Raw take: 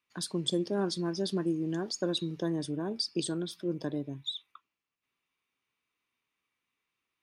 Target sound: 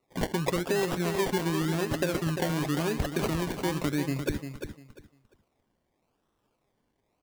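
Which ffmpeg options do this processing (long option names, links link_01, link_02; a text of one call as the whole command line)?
ffmpeg -i in.wav -af "aecho=1:1:7.5:0.61,acompressor=threshold=-32dB:ratio=6,acrusher=samples=27:mix=1:aa=0.000001:lfo=1:lforange=16.2:lforate=0.91,aecho=1:1:348|696|1044:0.398|0.0876|0.0193,volume=7.5dB" out.wav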